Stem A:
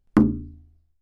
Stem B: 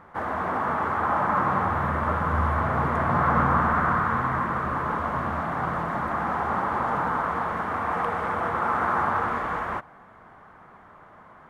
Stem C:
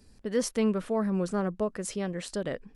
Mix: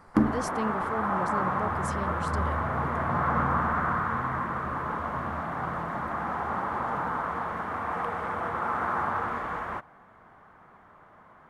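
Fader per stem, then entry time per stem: -6.0 dB, -4.5 dB, -6.0 dB; 0.00 s, 0.00 s, 0.00 s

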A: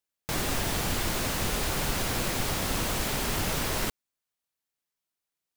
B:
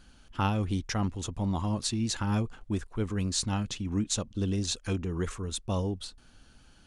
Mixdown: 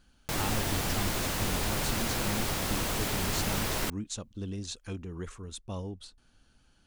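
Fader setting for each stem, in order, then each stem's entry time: -2.0 dB, -7.5 dB; 0.00 s, 0.00 s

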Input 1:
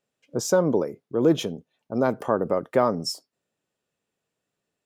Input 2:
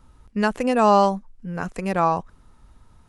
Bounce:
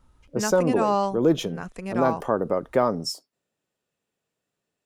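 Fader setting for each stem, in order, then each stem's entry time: -0.5 dB, -7.0 dB; 0.00 s, 0.00 s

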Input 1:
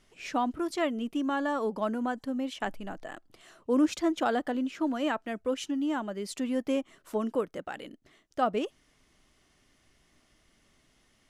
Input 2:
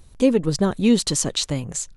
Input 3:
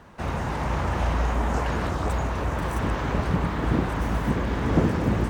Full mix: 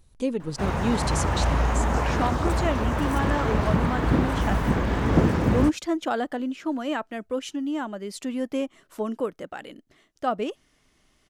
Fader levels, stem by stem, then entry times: +1.5 dB, -9.5 dB, +1.5 dB; 1.85 s, 0.00 s, 0.40 s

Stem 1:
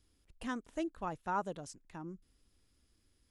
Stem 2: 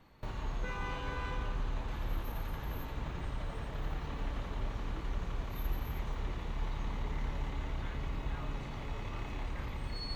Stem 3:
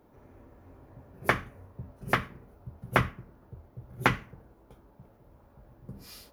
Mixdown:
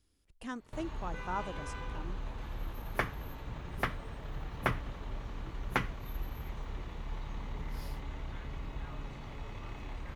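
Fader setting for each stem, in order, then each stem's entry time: -2.0 dB, -3.5 dB, -7.5 dB; 0.00 s, 0.50 s, 1.70 s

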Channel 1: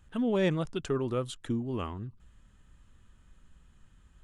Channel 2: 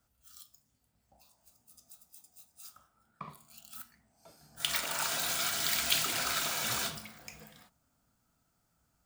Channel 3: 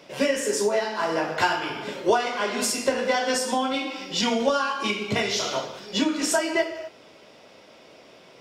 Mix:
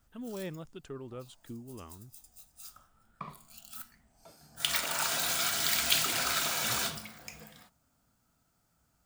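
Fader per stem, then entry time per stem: -12.5 dB, +2.0 dB, mute; 0.00 s, 0.00 s, mute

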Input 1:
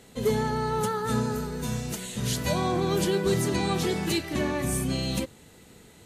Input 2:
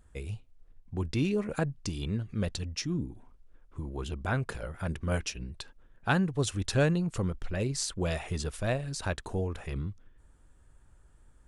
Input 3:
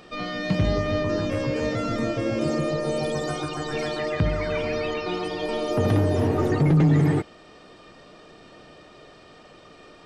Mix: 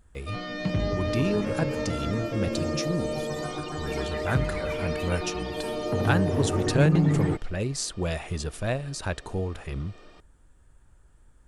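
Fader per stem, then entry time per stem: -17.5 dB, +2.0 dB, -4.5 dB; 0.90 s, 0.00 s, 0.15 s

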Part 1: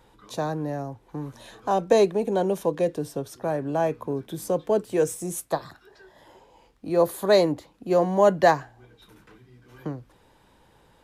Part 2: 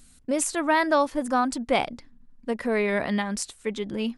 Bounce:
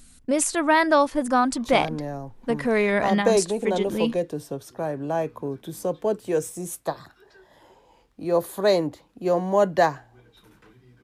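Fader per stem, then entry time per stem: -1.5 dB, +3.0 dB; 1.35 s, 0.00 s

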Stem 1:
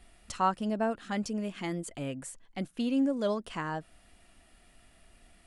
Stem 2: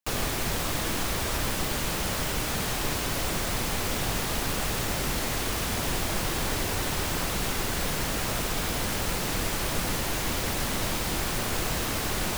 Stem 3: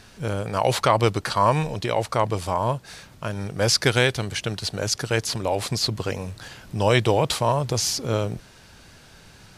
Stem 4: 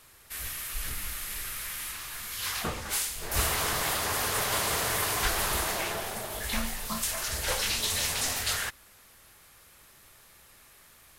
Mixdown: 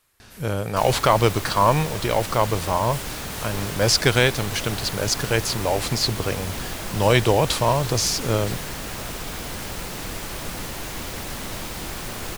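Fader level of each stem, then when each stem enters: mute, -3.0 dB, +1.5 dB, -10.5 dB; mute, 0.70 s, 0.20 s, 0.00 s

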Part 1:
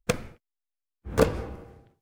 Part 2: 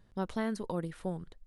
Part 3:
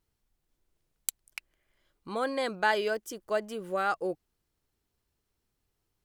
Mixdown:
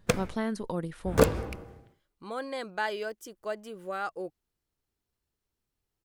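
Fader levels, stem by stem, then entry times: 0.0 dB, +2.0 dB, -5.0 dB; 0.00 s, 0.00 s, 0.15 s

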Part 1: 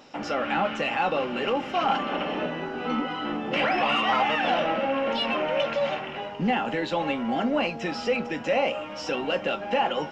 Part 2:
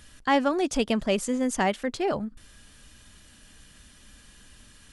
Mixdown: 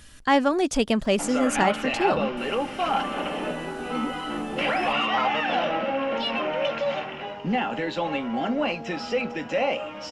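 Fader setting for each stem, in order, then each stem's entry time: -0.5 dB, +2.5 dB; 1.05 s, 0.00 s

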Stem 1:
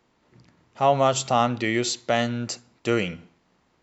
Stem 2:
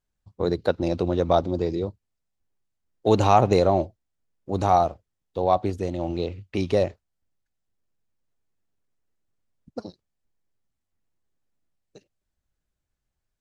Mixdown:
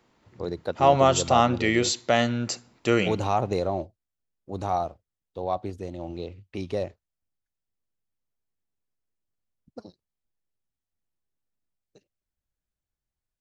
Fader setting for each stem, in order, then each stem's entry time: +1.0 dB, -7.5 dB; 0.00 s, 0.00 s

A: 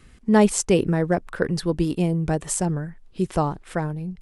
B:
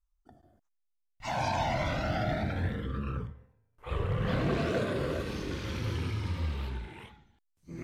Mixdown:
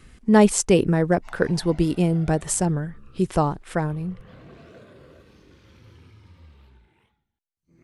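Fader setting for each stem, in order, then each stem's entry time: +1.5 dB, -17.0 dB; 0.00 s, 0.00 s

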